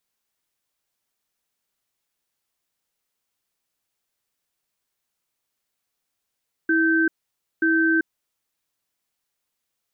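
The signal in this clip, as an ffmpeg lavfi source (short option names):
-f lavfi -i "aevalsrc='0.112*(sin(2*PI*325*t)+sin(2*PI*1550*t))*clip(min(mod(t,0.93),0.39-mod(t,0.93))/0.005,0,1)':d=1.76:s=44100"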